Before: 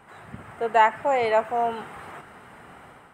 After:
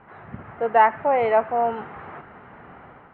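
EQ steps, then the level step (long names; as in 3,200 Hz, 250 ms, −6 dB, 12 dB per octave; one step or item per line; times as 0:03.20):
low-pass filter 2,600 Hz 12 dB per octave
high-frequency loss of the air 300 metres
+3.5 dB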